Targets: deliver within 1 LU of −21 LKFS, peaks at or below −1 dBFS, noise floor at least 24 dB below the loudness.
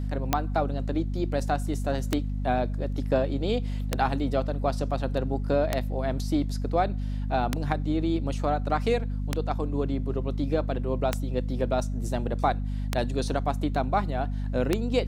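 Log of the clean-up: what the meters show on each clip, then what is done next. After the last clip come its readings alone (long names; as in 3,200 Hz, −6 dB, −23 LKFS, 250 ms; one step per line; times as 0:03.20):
number of clicks 9; mains hum 50 Hz; hum harmonics up to 250 Hz; level of the hum −27 dBFS; integrated loudness −28.0 LKFS; sample peak −6.5 dBFS; target loudness −21.0 LKFS
→ click removal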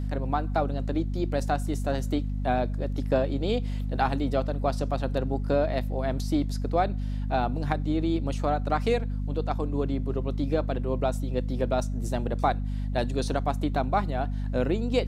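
number of clicks 0; mains hum 50 Hz; hum harmonics up to 250 Hz; level of the hum −27 dBFS
→ hum removal 50 Hz, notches 5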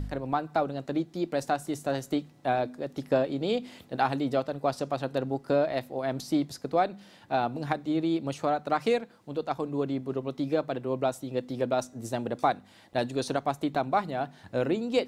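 mains hum none found; integrated loudness −30.0 LKFS; sample peak −10.5 dBFS; target loudness −21.0 LKFS
→ level +9 dB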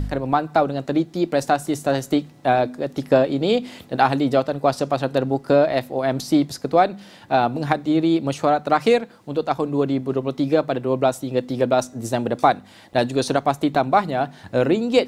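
integrated loudness −21.0 LKFS; sample peak −1.5 dBFS; background noise floor −47 dBFS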